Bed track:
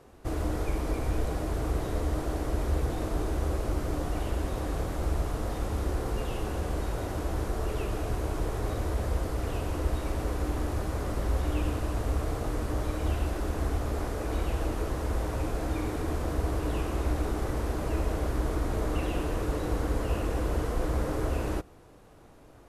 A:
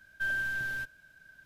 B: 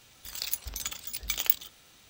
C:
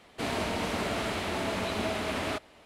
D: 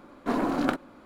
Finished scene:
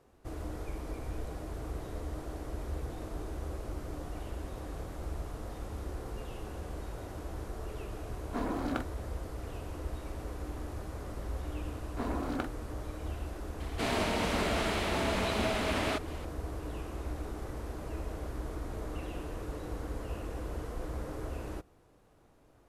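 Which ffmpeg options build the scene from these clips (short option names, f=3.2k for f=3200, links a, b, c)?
-filter_complex "[4:a]asplit=2[a][b];[0:a]volume=-9.5dB[c];[3:a]acompressor=mode=upward:threshold=-40dB:ratio=2.5:attack=3.2:release=140:knee=2.83:detection=peak[d];[a]atrim=end=1.05,asetpts=PTS-STARTPTS,volume=-8.5dB,afade=t=in:d=0.004:c=hsin,afade=t=out:st=1.046:d=0.004:c=hsin,adelay=8070[e];[b]atrim=end=1.05,asetpts=PTS-STARTPTS,volume=-9.5dB,afade=t=in:d=0.004:c=hsin,afade=t=out:st=1.046:d=0.004:c=hsin,adelay=11710[f];[d]atrim=end=2.65,asetpts=PTS-STARTPTS,afade=t=in:d=0.004:c=hsin,afade=t=out:st=2.646:d=0.004:c=hsin,adelay=13600[g];[c][e][f][g]amix=inputs=4:normalize=0"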